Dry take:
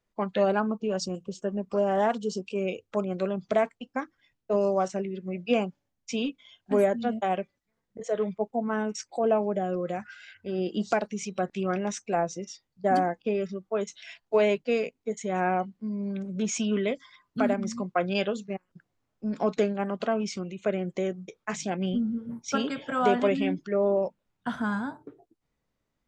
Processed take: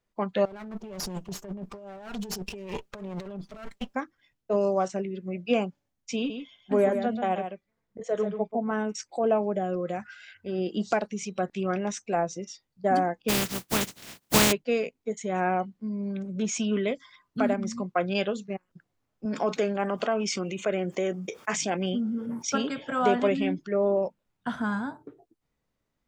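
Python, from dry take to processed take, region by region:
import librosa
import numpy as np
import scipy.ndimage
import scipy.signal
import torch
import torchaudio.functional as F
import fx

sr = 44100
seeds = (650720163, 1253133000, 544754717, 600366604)

y = fx.chain(x, sr, fx.lower_of_two(delay_ms=5.0),
    fx.over_compress(threshold_db=-38.0, ratio=-1.0), at=(0.45, 3.95))
y = fx.chain(y, sr, fx.high_shelf(hz=5300.0, db=-6.5),
    fx.echo_single(ms=135, db=-8.0), at=(6.16, 8.71))
y = fx.spec_flatten(y, sr, power=0.16, at=(13.28, 14.51), fade=0.02)
y = fx.peak_eq(y, sr, hz=180.0, db=12.0, octaves=2.3, at=(13.28, 14.51), fade=0.02)
y = fx.chain(y, sr, fx.highpass(hz=380.0, slope=6),
    fx.notch(hz=4000.0, q=8.1),
    fx.env_flatten(amount_pct=50), at=(19.25, 22.5))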